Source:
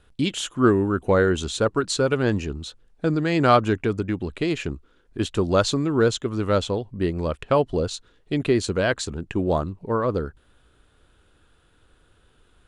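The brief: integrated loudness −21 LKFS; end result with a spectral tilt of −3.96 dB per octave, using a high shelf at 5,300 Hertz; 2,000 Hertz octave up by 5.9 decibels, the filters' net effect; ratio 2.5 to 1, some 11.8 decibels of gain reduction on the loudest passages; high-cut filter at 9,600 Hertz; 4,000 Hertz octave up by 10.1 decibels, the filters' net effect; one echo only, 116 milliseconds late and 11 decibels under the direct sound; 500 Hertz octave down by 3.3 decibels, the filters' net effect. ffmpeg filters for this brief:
ffmpeg -i in.wav -af "lowpass=9600,equalizer=frequency=500:width_type=o:gain=-4.5,equalizer=frequency=2000:width_type=o:gain=6,equalizer=frequency=4000:width_type=o:gain=7,highshelf=frequency=5300:gain=8.5,acompressor=threshold=-30dB:ratio=2.5,aecho=1:1:116:0.282,volume=9dB" out.wav

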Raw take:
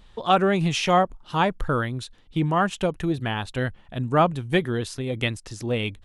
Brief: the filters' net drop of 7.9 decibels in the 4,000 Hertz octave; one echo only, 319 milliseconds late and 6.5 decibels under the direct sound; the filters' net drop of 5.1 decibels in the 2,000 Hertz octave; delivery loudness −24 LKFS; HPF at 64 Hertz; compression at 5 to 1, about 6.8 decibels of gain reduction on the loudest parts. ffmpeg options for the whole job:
ffmpeg -i in.wav -af "highpass=64,equalizer=frequency=2000:width_type=o:gain=-4.5,equalizer=frequency=4000:width_type=o:gain=-9,acompressor=threshold=-22dB:ratio=5,aecho=1:1:319:0.473,volume=4dB" out.wav

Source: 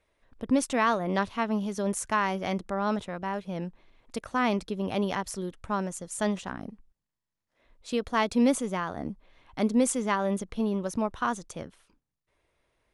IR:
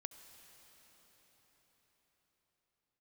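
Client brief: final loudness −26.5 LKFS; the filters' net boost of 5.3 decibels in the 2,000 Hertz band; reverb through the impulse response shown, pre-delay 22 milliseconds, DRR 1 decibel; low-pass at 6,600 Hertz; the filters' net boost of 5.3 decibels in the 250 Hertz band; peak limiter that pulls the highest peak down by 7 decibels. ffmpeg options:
-filter_complex "[0:a]lowpass=6600,equalizer=frequency=250:width_type=o:gain=6,equalizer=frequency=2000:width_type=o:gain=6.5,alimiter=limit=-15dB:level=0:latency=1,asplit=2[link_01][link_02];[1:a]atrim=start_sample=2205,adelay=22[link_03];[link_02][link_03]afir=irnorm=-1:irlink=0,volume=3dB[link_04];[link_01][link_04]amix=inputs=2:normalize=0,volume=-1dB"

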